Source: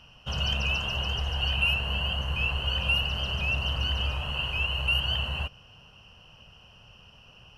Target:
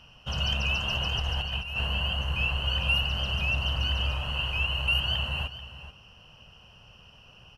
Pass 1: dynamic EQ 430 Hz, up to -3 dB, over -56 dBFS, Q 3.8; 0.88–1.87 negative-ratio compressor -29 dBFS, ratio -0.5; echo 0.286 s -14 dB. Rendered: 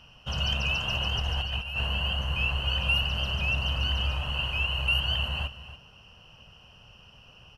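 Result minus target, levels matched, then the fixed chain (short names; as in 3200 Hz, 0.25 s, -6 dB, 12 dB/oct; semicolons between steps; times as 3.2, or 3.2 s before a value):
echo 0.15 s early
dynamic EQ 430 Hz, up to -3 dB, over -56 dBFS, Q 3.8; 0.88–1.87 negative-ratio compressor -29 dBFS, ratio -0.5; echo 0.436 s -14 dB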